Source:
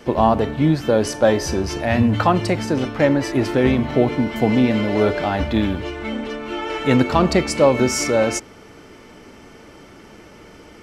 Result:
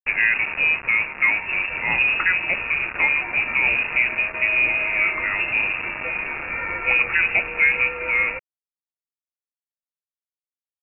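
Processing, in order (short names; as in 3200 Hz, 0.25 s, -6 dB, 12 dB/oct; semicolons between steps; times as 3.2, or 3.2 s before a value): in parallel at -0.5 dB: compressor 16:1, threshold -28 dBFS, peak gain reduction 19.5 dB; on the sum: bit-crush 4-bit; inverted band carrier 2700 Hz; gain -5 dB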